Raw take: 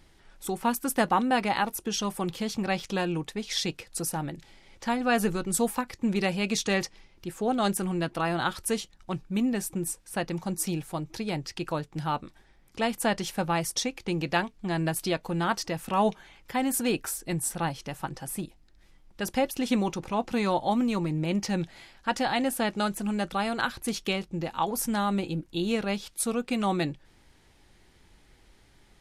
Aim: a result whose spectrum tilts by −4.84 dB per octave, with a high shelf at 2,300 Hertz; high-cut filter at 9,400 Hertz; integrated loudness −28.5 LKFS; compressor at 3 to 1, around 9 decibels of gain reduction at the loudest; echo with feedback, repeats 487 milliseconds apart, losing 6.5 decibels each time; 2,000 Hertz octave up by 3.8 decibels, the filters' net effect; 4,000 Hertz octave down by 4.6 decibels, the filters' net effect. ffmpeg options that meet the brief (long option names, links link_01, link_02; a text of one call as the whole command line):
ffmpeg -i in.wav -af "lowpass=9400,equalizer=frequency=2000:width_type=o:gain=8,highshelf=frequency=2300:gain=-3,equalizer=frequency=4000:width_type=o:gain=-7,acompressor=threshold=-31dB:ratio=3,aecho=1:1:487|974|1461|1948|2435|2922:0.473|0.222|0.105|0.0491|0.0231|0.0109,volume=5.5dB" out.wav